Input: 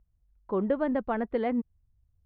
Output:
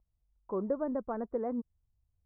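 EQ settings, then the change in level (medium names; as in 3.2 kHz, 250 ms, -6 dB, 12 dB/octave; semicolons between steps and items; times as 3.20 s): low-pass 1.1 kHz 24 dB/octave; dynamic bell 800 Hz, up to -7 dB, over -47 dBFS, Q 3; bass shelf 450 Hz -8.5 dB; 0.0 dB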